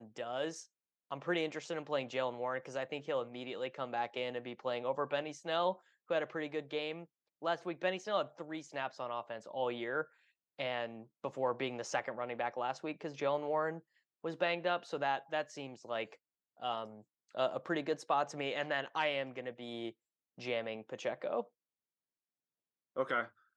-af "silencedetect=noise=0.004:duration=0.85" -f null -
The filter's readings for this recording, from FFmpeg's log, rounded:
silence_start: 21.43
silence_end: 22.97 | silence_duration: 1.53